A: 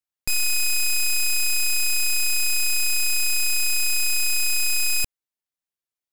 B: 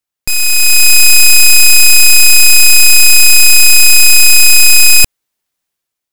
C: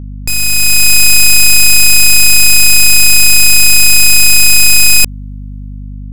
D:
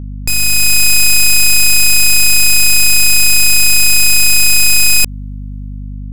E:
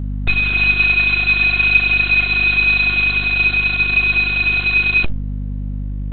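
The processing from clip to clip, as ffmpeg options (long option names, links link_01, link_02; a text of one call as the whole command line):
ffmpeg -i in.wav -af "dynaudnorm=framelen=180:gausssize=7:maxgain=9dB,volume=8.5dB" out.wav
ffmpeg -i in.wav -af "aeval=exprs='val(0)+0.0794*(sin(2*PI*50*n/s)+sin(2*PI*2*50*n/s)/2+sin(2*PI*3*50*n/s)/3+sin(2*PI*4*50*n/s)/4+sin(2*PI*5*50*n/s)/5)':channel_layout=same,volume=-1dB" out.wav
ffmpeg -i in.wav -af "acompressor=threshold=-6dB:ratio=6" out.wav
ffmpeg -i in.wav -af "volume=2dB" -ar 48000 -c:a libopus -b:a 6k out.opus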